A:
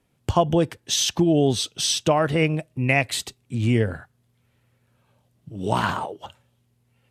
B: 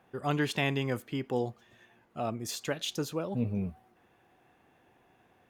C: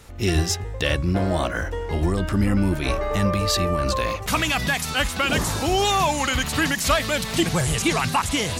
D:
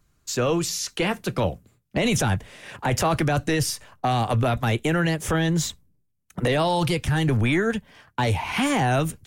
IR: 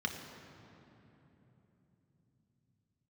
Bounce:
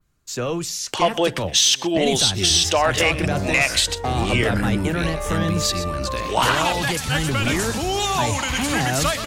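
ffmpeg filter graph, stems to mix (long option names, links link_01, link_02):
-filter_complex "[0:a]highpass=430,equalizer=frequency=2800:width=0.5:gain=7.5,asoftclip=type=tanh:threshold=-7.5dB,adelay=650,volume=3dB,asplit=2[link_01][link_02];[link_02]volume=-23.5dB[link_03];[1:a]acompressor=threshold=-31dB:ratio=6,adelay=900,volume=-10dB[link_04];[2:a]adelay=2150,volume=-3dB,asplit=2[link_05][link_06];[link_06]volume=-10.5dB[link_07];[3:a]volume=-2.5dB[link_08];[link_03][link_07]amix=inputs=2:normalize=0,aecho=0:1:124:1[link_09];[link_01][link_04][link_05][link_08][link_09]amix=inputs=5:normalize=0,adynamicequalizer=threshold=0.0224:dfrequency=6600:dqfactor=0.77:tfrequency=6600:tqfactor=0.77:attack=5:release=100:ratio=0.375:range=2.5:mode=boostabove:tftype=bell,alimiter=limit=-7.5dB:level=0:latency=1:release=162"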